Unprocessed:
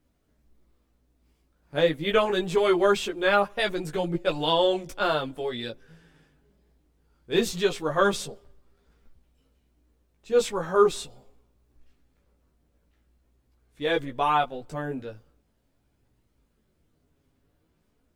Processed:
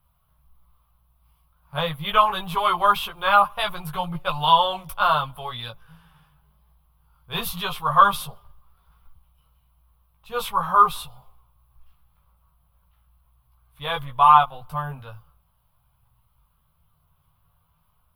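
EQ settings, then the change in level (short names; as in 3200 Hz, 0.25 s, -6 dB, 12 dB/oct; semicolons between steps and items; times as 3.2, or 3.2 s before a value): EQ curve 150 Hz 0 dB, 310 Hz -28 dB, 1100 Hz +10 dB, 1800 Hz -10 dB, 3100 Hz 0 dB, 7400 Hz -17 dB, 11000 Hz +8 dB; +5.5 dB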